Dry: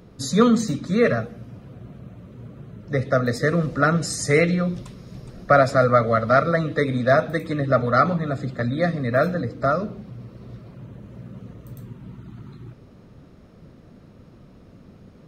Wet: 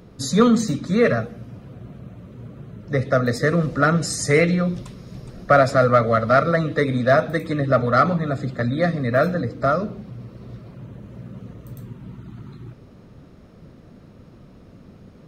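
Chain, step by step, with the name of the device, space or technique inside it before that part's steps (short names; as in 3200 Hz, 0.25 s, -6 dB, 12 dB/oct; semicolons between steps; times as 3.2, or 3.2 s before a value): parallel distortion (in parallel at -13 dB: hard clip -17 dBFS, distortion -9 dB)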